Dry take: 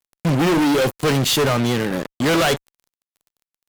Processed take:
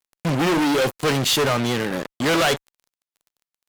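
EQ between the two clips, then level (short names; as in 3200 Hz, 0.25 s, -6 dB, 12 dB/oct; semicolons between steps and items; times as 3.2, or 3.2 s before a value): low shelf 390 Hz -5 dB; high shelf 11000 Hz -4 dB; 0.0 dB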